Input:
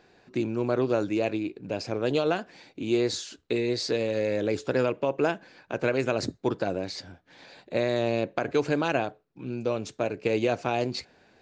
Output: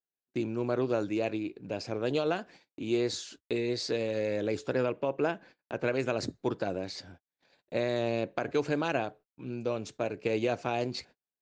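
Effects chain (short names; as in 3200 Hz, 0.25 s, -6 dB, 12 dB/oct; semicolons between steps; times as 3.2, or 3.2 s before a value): gate -47 dBFS, range -42 dB; 4.73–5.87 high shelf 6200 Hz -9.5 dB; gain -4 dB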